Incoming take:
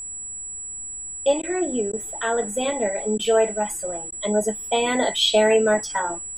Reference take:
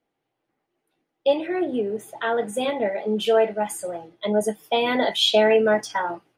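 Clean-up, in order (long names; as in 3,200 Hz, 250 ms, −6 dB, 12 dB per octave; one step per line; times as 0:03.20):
notch filter 7,800 Hz, Q 30
repair the gap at 0:01.42/0:01.92/0:03.18/0:04.11, 11 ms
downward expander −26 dBFS, range −21 dB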